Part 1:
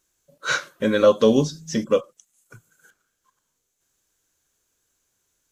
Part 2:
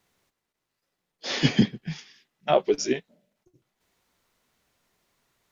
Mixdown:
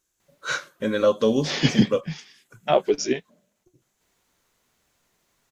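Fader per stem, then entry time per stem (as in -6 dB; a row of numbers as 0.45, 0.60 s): -4.0, +1.5 dB; 0.00, 0.20 s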